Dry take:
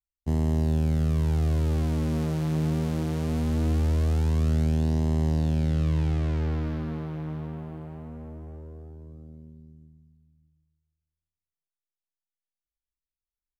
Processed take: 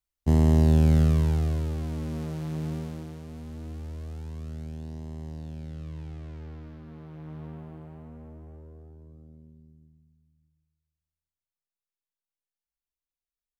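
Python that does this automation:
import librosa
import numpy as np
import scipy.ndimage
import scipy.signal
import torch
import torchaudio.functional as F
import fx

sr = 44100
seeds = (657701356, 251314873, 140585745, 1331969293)

y = fx.gain(x, sr, db=fx.line((0.98, 5.0), (1.76, -6.0), (2.74, -6.0), (3.24, -14.0), (6.81, -14.0), (7.47, -5.0)))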